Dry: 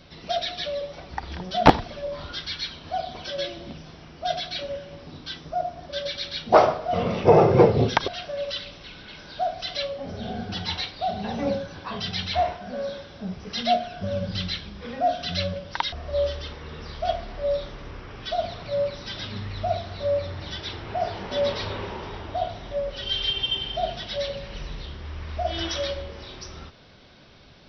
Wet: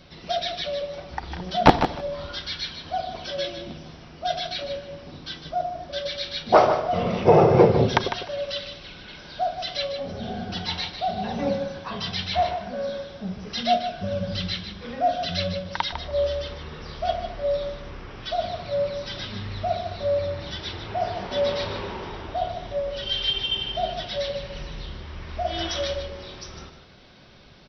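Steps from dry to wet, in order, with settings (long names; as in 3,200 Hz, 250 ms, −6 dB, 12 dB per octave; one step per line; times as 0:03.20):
repeating echo 152 ms, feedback 16%, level −9 dB
on a send at −18 dB: convolution reverb RT60 0.90 s, pre-delay 5 ms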